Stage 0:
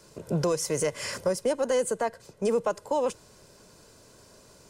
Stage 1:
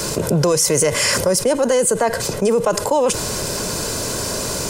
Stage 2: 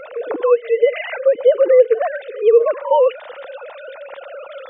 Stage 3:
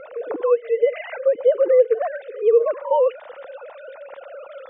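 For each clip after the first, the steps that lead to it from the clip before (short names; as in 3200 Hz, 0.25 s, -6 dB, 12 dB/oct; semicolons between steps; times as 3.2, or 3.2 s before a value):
high shelf 6300 Hz +5.5 dB; fast leveller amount 70%; gain +7.5 dB
sine-wave speech; pre-echo 75 ms -19 dB; gain +1.5 dB
LPF 1600 Hz 6 dB/oct; gain -3.5 dB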